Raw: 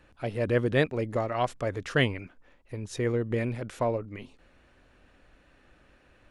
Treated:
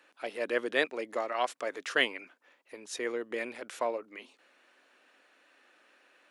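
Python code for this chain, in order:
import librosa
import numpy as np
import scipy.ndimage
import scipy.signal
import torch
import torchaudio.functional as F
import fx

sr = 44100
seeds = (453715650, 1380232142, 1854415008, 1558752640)

y = scipy.signal.sosfilt(scipy.signal.butter(4, 270.0, 'highpass', fs=sr, output='sos'), x)
y = fx.tilt_shelf(y, sr, db=-5.5, hz=630.0)
y = y * 10.0 ** (-3.5 / 20.0)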